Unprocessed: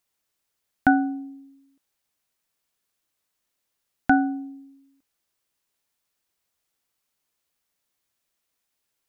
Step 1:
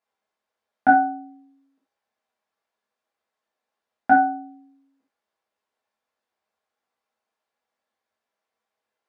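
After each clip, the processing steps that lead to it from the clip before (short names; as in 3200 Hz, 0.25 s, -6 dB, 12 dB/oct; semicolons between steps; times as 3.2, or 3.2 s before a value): band-pass 730 Hz, Q 0.96; non-linear reverb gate 0.11 s falling, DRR -5.5 dB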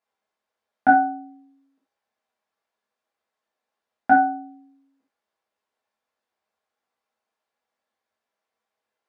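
nothing audible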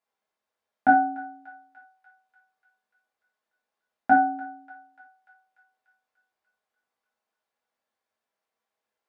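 thinning echo 0.294 s, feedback 72%, high-pass 1100 Hz, level -17 dB; gain -2.5 dB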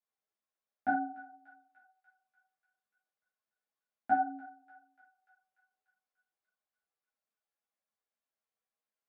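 notch 920 Hz, Q 9.2; ensemble effect; gain -8.5 dB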